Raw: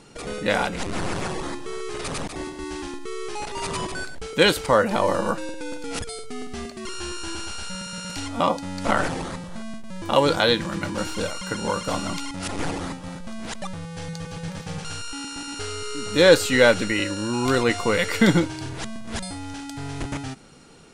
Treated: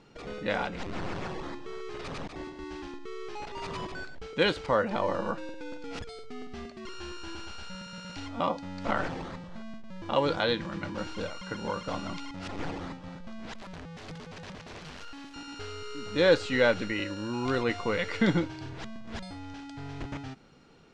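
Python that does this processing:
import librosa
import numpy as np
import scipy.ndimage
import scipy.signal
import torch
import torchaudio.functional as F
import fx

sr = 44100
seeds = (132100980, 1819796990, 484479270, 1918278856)

y = fx.overflow_wrap(x, sr, gain_db=30.0, at=(13.55, 15.34))
y = scipy.signal.sosfilt(scipy.signal.bessel(4, 4100.0, 'lowpass', norm='mag', fs=sr, output='sos'), y)
y = F.gain(torch.from_numpy(y), -7.5).numpy()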